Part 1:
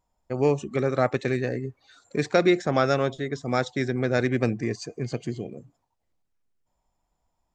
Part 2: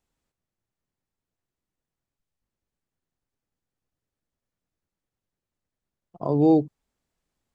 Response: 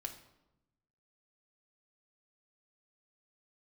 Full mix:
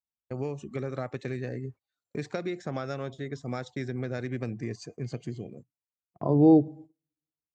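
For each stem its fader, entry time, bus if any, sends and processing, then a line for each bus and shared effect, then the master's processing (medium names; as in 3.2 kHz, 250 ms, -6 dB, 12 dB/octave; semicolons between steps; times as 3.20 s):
-7.5 dB, 0.00 s, no send, compression, threshold -23 dBFS, peak gain reduction 8.5 dB
-3.5 dB, 0.00 s, send -11 dB, treble shelf 3.4 kHz -12 dB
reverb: on, RT60 0.95 s, pre-delay 3 ms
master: gate -48 dBFS, range -28 dB; high-pass 87 Hz; bass shelf 130 Hz +11 dB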